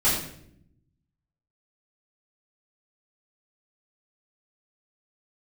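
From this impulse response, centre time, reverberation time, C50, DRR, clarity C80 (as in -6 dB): 48 ms, 0.70 s, 3.0 dB, -12.0 dB, 6.0 dB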